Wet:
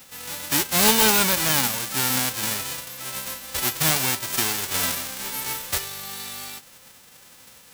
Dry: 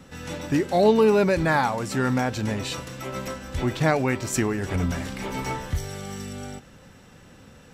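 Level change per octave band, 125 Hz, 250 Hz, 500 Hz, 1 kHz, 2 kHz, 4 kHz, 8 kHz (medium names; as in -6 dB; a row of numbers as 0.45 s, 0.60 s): -7.0 dB, -6.0 dB, -9.0 dB, -1.0 dB, +3.0 dB, +12.0 dB, +14.0 dB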